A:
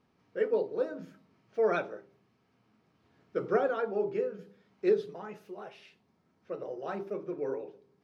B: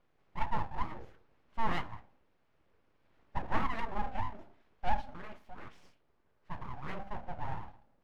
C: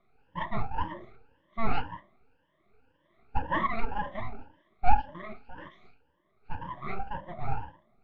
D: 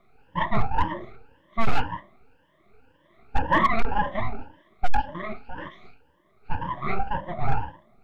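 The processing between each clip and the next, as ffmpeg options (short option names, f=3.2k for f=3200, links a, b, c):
-af "aeval=exprs='abs(val(0))':c=same,bass=f=250:g=2,treble=f=4k:g=-9,volume=-1.5dB"
-af "afftfilt=real='re*pow(10,22/40*sin(2*PI*(1.2*log(max(b,1)*sr/1024/100)/log(2)-(1.9)*(pts-256)/sr)))':imag='im*pow(10,22/40*sin(2*PI*(1.2*log(max(b,1)*sr/1024/100)/log(2)-(1.9)*(pts-256)/sr)))':win_size=1024:overlap=0.75,lowpass=f=3.7k:w=0.5412,lowpass=f=3.7k:w=1.3066"
-af "asoftclip=type=hard:threshold=-19.5dB,volume=8.5dB"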